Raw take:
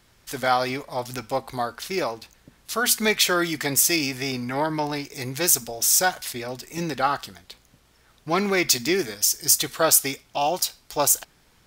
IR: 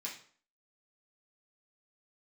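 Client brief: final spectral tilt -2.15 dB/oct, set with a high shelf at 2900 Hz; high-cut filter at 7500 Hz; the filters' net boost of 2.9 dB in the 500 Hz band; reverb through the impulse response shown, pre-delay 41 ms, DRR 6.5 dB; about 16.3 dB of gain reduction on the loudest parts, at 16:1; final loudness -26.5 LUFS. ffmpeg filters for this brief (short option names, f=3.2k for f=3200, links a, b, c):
-filter_complex "[0:a]lowpass=7.5k,equalizer=f=500:t=o:g=3.5,highshelf=f=2.9k:g=9,acompressor=threshold=-26dB:ratio=16,asplit=2[a][b];[1:a]atrim=start_sample=2205,adelay=41[c];[b][c]afir=irnorm=-1:irlink=0,volume=-6dB[d];[a][d]amix=inputs=2:normalize=0,volume=3dB"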